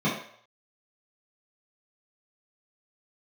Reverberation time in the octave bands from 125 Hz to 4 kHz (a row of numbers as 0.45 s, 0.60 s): 0.40 s, 0.40 s, 0.60 s, 0.60 s, 0.60 s, 0.55 s